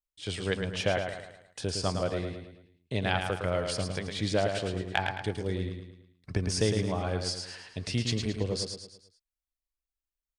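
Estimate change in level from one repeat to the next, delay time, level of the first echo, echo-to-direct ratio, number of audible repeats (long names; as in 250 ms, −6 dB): −7.0 dB, 109 ms, −6.0 dB, −5.0 dB, 5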